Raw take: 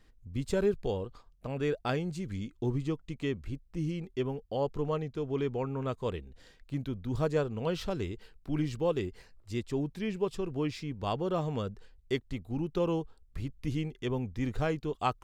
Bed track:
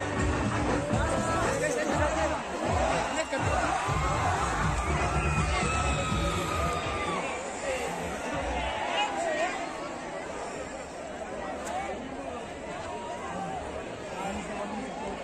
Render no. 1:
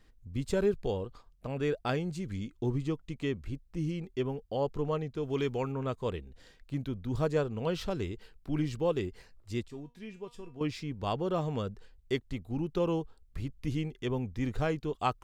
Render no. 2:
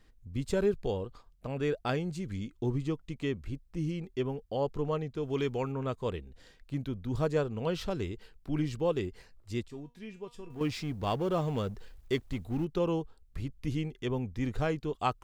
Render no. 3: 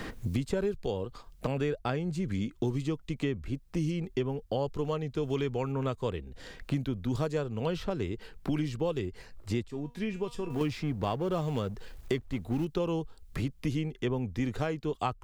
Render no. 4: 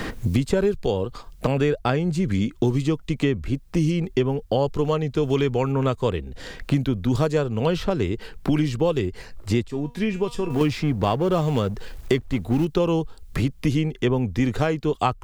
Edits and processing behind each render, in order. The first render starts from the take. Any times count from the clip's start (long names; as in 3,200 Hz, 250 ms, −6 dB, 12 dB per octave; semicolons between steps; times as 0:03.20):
0:05.23–0:05.72: high-shelf EQ 2,300 Hz +10 dB; 0:09.68–0:10.61: tuned comb filter 240 Hz, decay 0.27 s, mix 80%
0:10.50–0:12.65: mu-law and A-law mismatch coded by mu
multiband upward and downward compressor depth 100%
level +9.5 dB